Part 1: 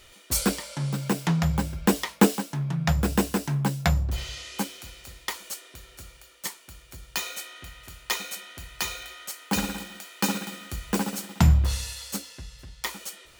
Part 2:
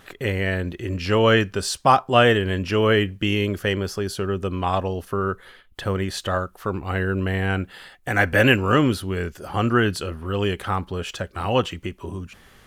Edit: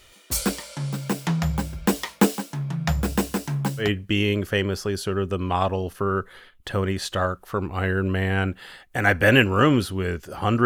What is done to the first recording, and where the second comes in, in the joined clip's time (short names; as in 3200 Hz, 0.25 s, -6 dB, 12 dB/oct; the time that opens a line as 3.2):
part 1
3.84 switch to part 2 from 2.96 s, crossfade 0.14 s